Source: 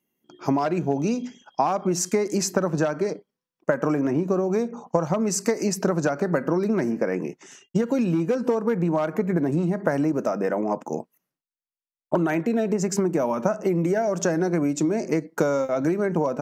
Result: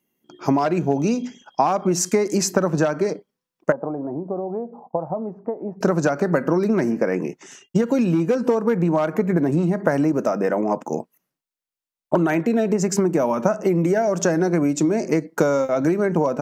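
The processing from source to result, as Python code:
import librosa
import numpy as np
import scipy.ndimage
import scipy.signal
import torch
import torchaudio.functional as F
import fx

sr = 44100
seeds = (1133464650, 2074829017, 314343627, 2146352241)

y = fx.ladder_lowpass(x, sr, hz=900.0, resonance_pct=55, at=(3.72, 5.81))
y = y * librosa.db_to_amplitude(3.5)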